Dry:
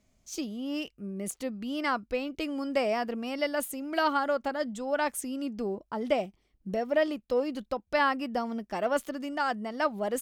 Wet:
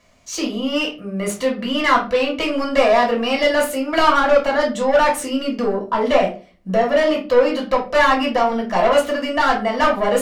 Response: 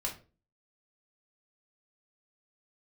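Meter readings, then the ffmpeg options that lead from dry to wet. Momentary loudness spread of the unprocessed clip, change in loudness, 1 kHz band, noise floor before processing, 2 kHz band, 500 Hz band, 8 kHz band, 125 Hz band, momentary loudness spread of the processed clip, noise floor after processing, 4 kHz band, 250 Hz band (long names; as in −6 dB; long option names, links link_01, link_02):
8 LU, +13.0 dB, +13.5 dB, −72 dBFS, +13.0 dB, +13.5 dB, +9.5 dB, can't be measured, 7 LU, −42 dBFS, +15.0 dB, +10.5 dB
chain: -filter_complex "[0:a]asplit=2[link_01][link_02];[link_02]highpass=frequency=720:poles=1,volume=21dB,asoftclip=type=tanh:threshold=-13.5dB[link_03];[link_01][link_03]amix=inputs=2:normalize=0,lowpass=frequency=2700:poles=1,volume=-6dB[link_04];[1:a]atrim=start_sample=2205[link_05];[link_04][link_05]afir=irnorm=-1:irlink=0,volume=5dB"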